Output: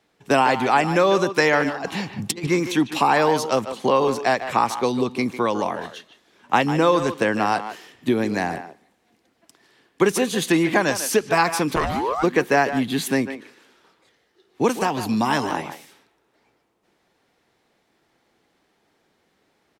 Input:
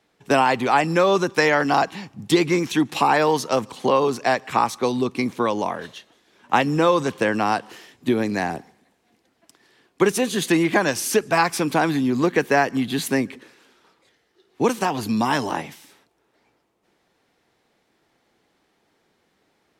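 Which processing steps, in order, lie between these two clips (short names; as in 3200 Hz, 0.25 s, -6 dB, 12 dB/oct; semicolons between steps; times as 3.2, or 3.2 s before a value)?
1.67–2.47 negative-ratio compressor -25 dBFS, ratio -0.5; speakerphone echo 0.15 s, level -10 dB; 11.75–12.22 ring modulator 270 Hz -> 1100 Hz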